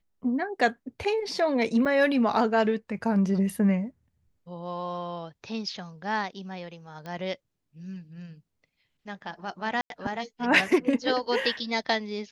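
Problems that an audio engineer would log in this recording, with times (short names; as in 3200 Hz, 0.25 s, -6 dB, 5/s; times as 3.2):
1.85–1.86 gap 5.9 ms
7.06 pop -26 dBFS
9.81–9.9 gap 92 ms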